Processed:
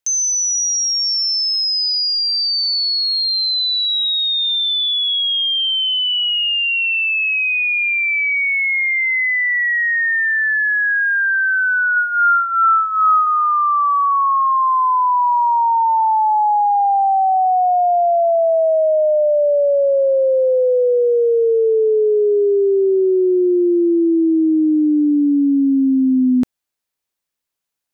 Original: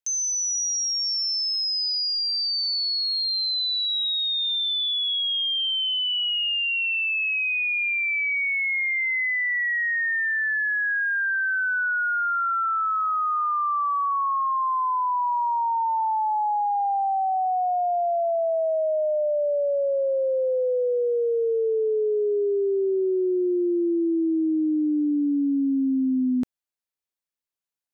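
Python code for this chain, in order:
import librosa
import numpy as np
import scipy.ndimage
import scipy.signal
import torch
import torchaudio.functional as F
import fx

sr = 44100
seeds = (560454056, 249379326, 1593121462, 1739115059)

y = fx.rider(x, sr, range_db=10, speed_s=0.5)
y = fx.doubler(y, sr, ms=15.0, db=-5.0, at=(11.95, 13.27))
y = y * 10.0 ** (8.0 / 20.0)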